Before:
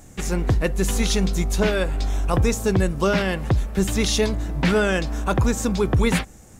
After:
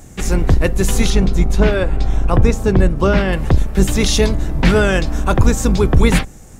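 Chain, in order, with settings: octave divider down 2 oct, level +1 dB; 1.10–3.33 s: treble shelf 4.3 kHz -11.5 dB; trim +5 dB

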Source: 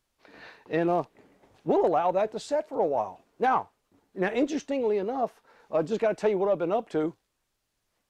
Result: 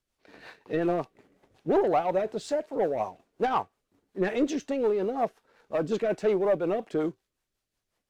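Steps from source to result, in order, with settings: waveshaping leveller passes 1; rotary cabinet horn 5.5 Hz; feedback comb 380 Hz, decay 0.18 s, mix 30%; trim +2 dB

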